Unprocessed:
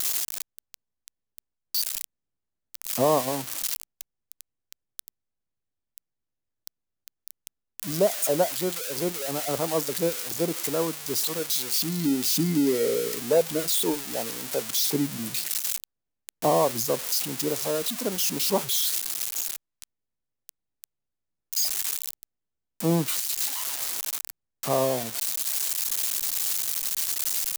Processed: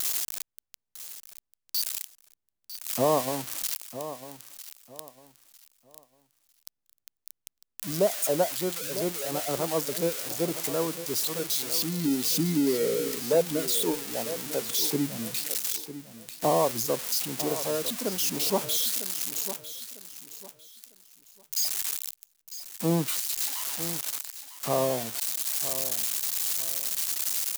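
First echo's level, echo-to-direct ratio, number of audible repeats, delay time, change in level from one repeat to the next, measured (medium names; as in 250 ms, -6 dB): -13.0 dB, -12.5 dB, 2, 951 ms, -11.5 dB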